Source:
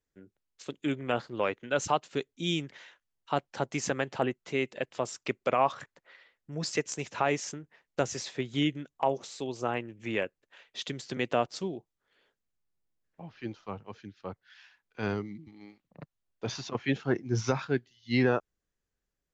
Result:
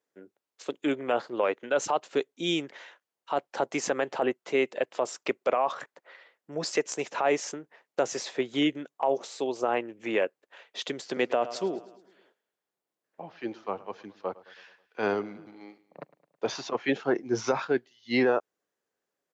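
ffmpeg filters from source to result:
ffmpeg -i in.wav -filter_complex "[0:a]asplit=3[link_01][link_02][link_03];[link_01]afade=type=out:start_time=11.14:duration=0.02[link_04];[link_02]aecho=1:1:107|214|321|428|535:0.1|0.058|0.0336|0.0195|0.0113,afade=type=in:start_time=11.14:duration=0.02,afade=type=out:start_time=16.45:duration=0.02[link_05];[link_03]afade=type=in:start_time=16.45:duration=0.02[link_06];[link_04][link_05][link_06]amix=inputs=3:normalize=0,highpass=560,tiltshelf=frequency=880:gain=7.5,alimiter=limit=-23.5dB:level=0:latency=1:release=42,volume=8.5dB" out.wav

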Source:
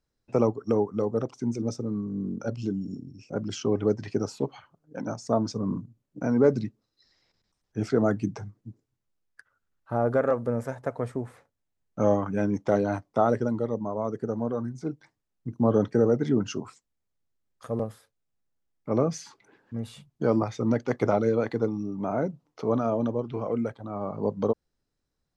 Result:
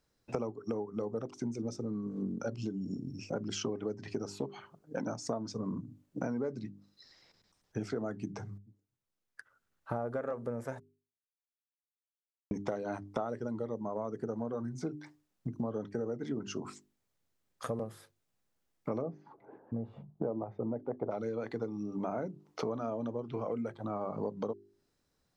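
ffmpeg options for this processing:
ffmpeg -i in.wav -filter_complex "[0:a]asplit=3[link_01][link_02][link_03];[link_01]afade=type=out:start_time=19.01:duration=0.02[link_04];[link_02]lowpass=frequency=720:width_type=q:width=1.6,afade=type=in:start_time=19.01:duration=0.02,afade=type=out:start_time=21.1:duration=0.02[link_05];[link_03]afade=type=in:start_time=21.1:duration=0.02[link_06];[link_04][link_05][link_06]amix=inputs=3:normalize=0,asplit=4[link_07][link_08][link_09][link_10];[link_07]atrim=end=8.58,asetpts=PTS-STARTPTS,afade=type=out:start_time=8.576:duration=0.004:curve=hsin[link_11];[link_08]atrim=start=8.58:end=10.8,asetpts=PTS-STARTPTS,afade=type=in:duration=1.43,afade=type=out:start_time=2.216:duration=0.004:curve=hsin[link_12];[link_09]atrim=start=10.8:end=12.51,asetpts=PTS-STARTPTS,volume=0[link_13];[link_10]atrim=start=12.51,asetpts=PTS-STARTPTS,afade=type=in:duration=0.004:curve=hsin[link_14];[link_11][link_12][link_13][link_14]concat=n=4:v=0:a=1,bandreject=frequency=50:width_type=h:width=6,bandreject=frequency=100:width_type=h:width=6,bandreject=frequency=150:width_type=h:width=6,bandreject=frequency=200:width_type=h:width=6,bandreject=frequency=250:width_type=h:width=6,bandreject=frequency=300:width_type=h:width=6,bandreject=frequency=350:width_type=h:width=6,bandreject=frequency=400:width_type=h:width=6,acompressor=threshold=-38dB:ratio=12,lowshelf=frequency=61:gain=-10,volume=6dB" out.wav

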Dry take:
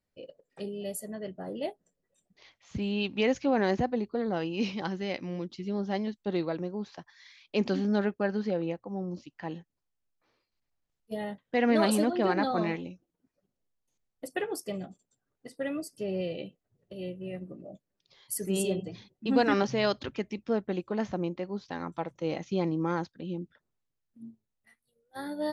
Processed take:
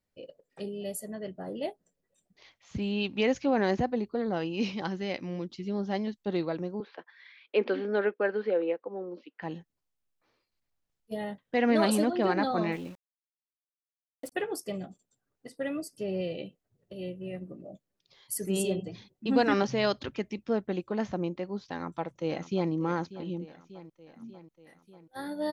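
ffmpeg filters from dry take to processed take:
ffmpeg -i in.wav -filter_complex "[0:a]asettb=1/sr,asplit=3[link_01][link_02][link_03];[link_01]atrim=end=6.804[link_04];[link_02]atrim=start=6.8:end=9.42,asetpts=PTS-STARTPTS,afade=type=in:duration=0.004:curve=qsin,afade=type=out:start_time=2.616:duration=0.004:curve=qsin,highpass=frequency=280:width=0.5412,highpass=frequency=280:width=1.3066,equalizer=frequency=470:width_type=q:width=4:gain=9,equalizer=frequency=750:width_type=q:width=4:gain=-3,equalizer=frequency=1500:width_type=q:width=4:gain=5,equalizer=frequency=2200:width_type=q:width=4:gain=3,lowpass=frequency=3500:width=0.5412,lowpass=frequency=3500:width=1.3066[link_05];[link_03]atrim=start=9.416[link_06];[link_04][link_05]acrossfade=duration=0.004:curve1=hsin:curve2=qsin[link_07];[link_07][link_06]acrossfade=duration=0.004:curve1=qsin:curve2=hsin,asettb=1/sr,asplit=3[link_08][link_09][link_10];[link_08]atrim=end=12.724[link_11];[link_09]atrim=start=12.72:end=14.32,asetpts=PTS-STARTPTS,afade=type=in:duration=0.004:curve=qsin,afade=type=out:start_time=1.596:duration=0.004:curve=qsin,aeval=exprs='val(0)*gte(abs(val(0)),0.00376)':channel_layout=same[link_12];[link_10]atrim=start=14.316[link_13];[link_11][link_12]acrossfade=duration=0.004:curve1=hsin:curve2=qsin[link_14];[link_14][link_13]acrossfade=duration=0.004:curve1=qsin:curve2=hsin,asplit=2[link_15][link_16];[link_16]afade=type=in:start_time=21.7:duration=0.01,afade=type=out:start_time=22.71:duration=0.01,aecho=0:1:590|1180|1770|2360|2950|3540|4130:0.177828|0.115588|0.0751323|0.048836|0.0317434|0.0206332|0.0134116[link_17];[link_15][link_17]amix=inputs=2:normalize=0" out.wav

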